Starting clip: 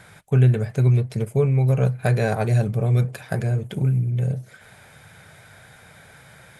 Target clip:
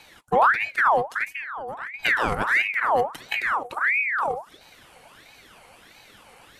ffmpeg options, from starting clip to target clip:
ffmpeg -i in.wav -filter_complex "[0:a]asettb=1/sr,asplit=3[link_01][link_02][link_03];[link_01]atrim=end=1.324[link_04];[link_02]atrim=start=1.32:end=1.94,asetpts=PTS-STARTPTS,afade=type=in:duration=0.004:curve=qsin,afade=type=out:start_time=0.616:duration=0.004:curve=qsin,acompressor=threshold=-32dB:ratio=4[link_05];[link_03]atrim=start=1.936[link_06];[link_04][link_05]acrossfade=duration=0.004:curve1=hsin:curve2=qsin[link_07];[link_07][link_06]acrossfade=duration=0.004:curve1=qsin:curve2=hsin,aeval=exprs='val(0)*sin(2*PI*1500*n/s+1500*0.6/1.5*sin(2*PI*1.5*n/s))':channel_layout=same" out.wav

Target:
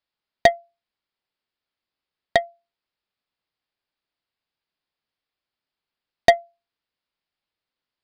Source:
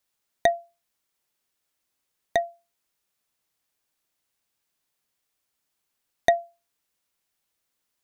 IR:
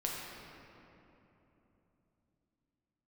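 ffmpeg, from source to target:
-af "aeval=exprs='0.562*(cos(1*acos(clip(val(0)/0.562,-1,1)))-cos(1*PI/2))+0.00398*(cos(4*acos(clip(val(0)/0.562,-1,1)))-cos(4*PI/2))+0.0178*(cos(5*acos(clip(val(0)/0.562,-1,1)))-cos(5*PI/2))+0.0708*(cos(7*acos(clip(val(0)/0.562,-1,1)))-cos(7*PI/2))':channel_layout=same,aresample=11025,aresample=44100,volume=11dB,asoftclip=hard,volume=-11dB,volume=7.5dB"

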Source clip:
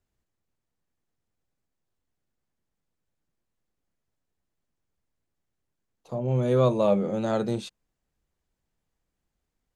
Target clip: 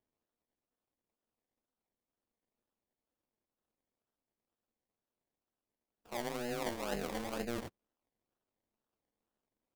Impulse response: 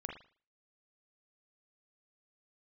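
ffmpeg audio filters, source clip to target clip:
-af "afftfilt=real='re*between(b*sr/4096,200,6300)':imag='im*between(b*sr/4096,200,6300)':win_size=4096:overlap=0.75,areverse,acompressor=threshold=-32dB:ratio=10,areverse,acrusher=samples=27:mix=1:aa=0.000001:lfo=1:lforange=16.2:lforate=2.1,tremolo=f=240:d=1,volume=1dB"

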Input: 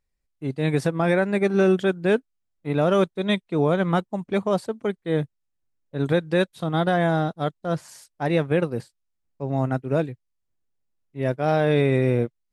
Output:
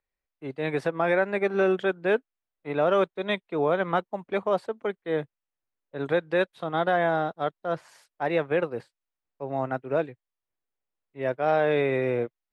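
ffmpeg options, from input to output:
ffmpeg -i in.wav -filter_complex "[0:a]acrossover=split=370 3400:gain=0.224 1 0.178[link_01][link_02][link_03];[link_01][link_02][link_03]amix=inputs=3:normalize=0" out.wav

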